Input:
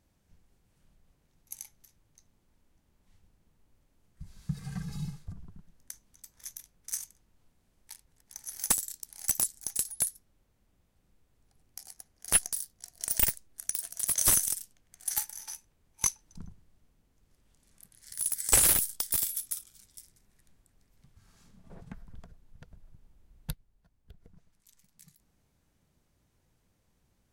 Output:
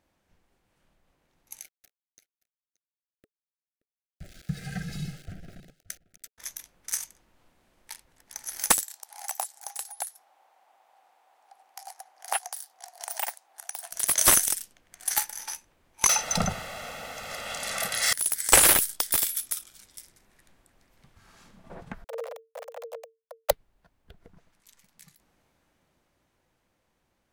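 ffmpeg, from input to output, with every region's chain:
-filter_complex "[0:a]asettb=1/sr,asplit=3[s0][s1][s2];[s0]atrim=end=1.614[s3];[s1]atrim=start=1.61:end=6.38,asetpts=PTS-STARTPTS,afade=t=in:d=0.004:c=qsin,afade=t=out:st=4.766:d=0.004:c=qsin,aeval=exprs='val(0)*gte(abs(val(0)),0.00237)':c=same,asuperstop=centerf=1000:order=8:qfactor=1.8,aecho=1:1:576:0.0891,atrim=end_sample=210357[s4];[s2]atrim=start=6.376[s5];[s3][s4]acrossfade=d=0.004:c1=hsin:c2=qsin[s6];[s6][s5]acrossfade=d=0.004:c1=qsin:c2=hsin,asettb=1/sr,asplit=3[s7][s8][s9];[s7]atrim=end=8.834[s10];[s8]atrim=start=8.83:end=13.92,asetpts=PTS-STARTPTS,afade=t=in:d=0.004:c=qsin,afade=t=out:st=5.086:d=0.004:c=qsin,acompressor=threshold=0.00224:ratio=1.5:attack=3.2:release=140:knee=1:detection=peak,highpass=f=780:t=q:w=6.6[s11];[s9]atrim=start=13.916[s12];[s10][s11]acrossfade=d=0.004:c1=hsin:c2=qsin[s13];[s13][s12]acrossfade=d=0.004:c1=qsin:c2=hsin,asettb=1/sr,asplit=3[s14][s15][s16];[s14]atrim=end=16.094[s17];[s15]atrim=start=16.09:end=18.13,asetpts=PTS-STARTPTS,afade=t=in:d=0.004:c=qsin,afade=t=out:st=2.036:d=0.004:c=qsin,asplit=2[s18][s19];[s19]highpass=f=720:p=1,volume=35.5,asoftclip=type=tanh:threshold=0.0501[s20];[s18][s20]amix=inputs=2:normalize=0,lowpass=f=7500:p=1,volume=0.501,aecho=1:1:1.5:0.84,atrim=end_sample=89964,acontrast=37[s21];[s16]atrim=start=18.126[s22];[s17][s21]acrossfade=d=0.004:c1=hsin:c2=qsin[s23];[s23][s22]acrossfade=d=0.004:c1=qsin:c2=hsin,asettb=1/sr,asplit=3[s24][s25][s26];[s24]atrim=end=22.044[s27];[s25]atrim=start=22.04:end=23.51,asetpts=PTS-STARTPTS,afade=t=in:d=0.004:c=qsin,afade=t=out:st=1.466:d=0.004:c=qsin,bass=f=250:g=2,treble=f=4000:g=7,acrusher=bits=5:dc=4:mix=0:aa=0.000001,afreqshift=450[s28];[s26]atrim=start=23.506[s29];[s27][s28]acrossfade=d=0.004:c1=hsin:c2=qsin[s30];[s30][s29]acrossfade=d=0.004:c1=qsin:c2=hsin,bass=f=250:g=-12,treble=f=4000:g=-8,bandreject=f=430:w=12,dynaudnorm=f=330:g=13:m=2.24,volume=1.78"

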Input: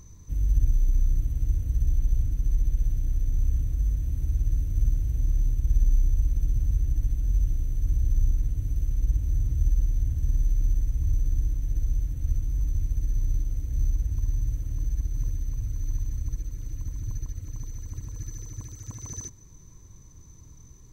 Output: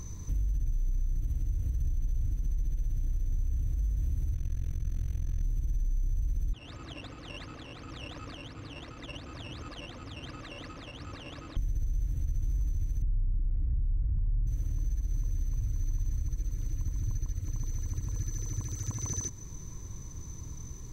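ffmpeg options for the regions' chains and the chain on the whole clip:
-filter_complex "[0:a]asettb=1/sr,asplit=3[s0][s1][s2];[s0]atrim=end=4.344[s3];[s1]atrim=start=4.34:end=5.43,asetpts=PTS-STARTPTS,afade=t=in:d=0.004:c=qsin,afade=t=out:st=1.086:d=0.004:c=qsin,equalizer=f=1800:w=0.35:g=8.5,tremolo=f=43:d=0.974[s4];[s2]atrim=start=5.426[s5];[s3][s4]acrossfade=d=0.004:c1=hsin:c2=qsin[s6];[s6][s5]acrossfade=d=0.004:c1=qsin:c2=hsin,asettb=1/sr,asplit=3[s7][s8][s9];[s7]atrim=end=6.534[s10];[s8]atrim=start=6.53:end=11.57,asetpts=PTS-STARTPTS,afade=t=in:d=0.004:c=qsin,afade=t=out:st=5.036:d=0.004:c=qsin,acrusher=samples=11:mix=1:aa=0.000001:lfo=1:lforange=11:lforate=2.8,highpass=340,lowpass=3900[s11];[s9]atrim=start=11.566[s12];[s10][s11]acrossfade=d=0.004:c1=hsin:c2=qsin[s13];[s13][s12]acrossfade=d=0.004:c1=qsin:c2=hsin,asettb=1/sr,asplit=3[s14][s15][s16];[s14]atrim=end=13.024[s17];[s15]atrim=start=13.02:end=14.47,asetpts=PTS-STARTPTS,afade=t=in:d=0.004:c=qsin,afade=t=out:st=1.446:d=0.004:c=qsin,lowpass=f=2000:w=0.5412,lowpass=f=2000:w=1.3066,lowshelf=f=250:g=9.5[s18];[s16]atrim=start=14.466[s19];[s17][s18]acrossfade=d=0.004:c1=hsin:c2=qsin[s20];[s20][s19]acrossfade=d=0.004:c1=qsin:c2=hsin,highshelf=f=11000:g=-3.5,alimiter=limit=0.0794:level=0:latency=1:release=46,acompressor=threshold=0.0112:ratio=2.5,volume=2.37"

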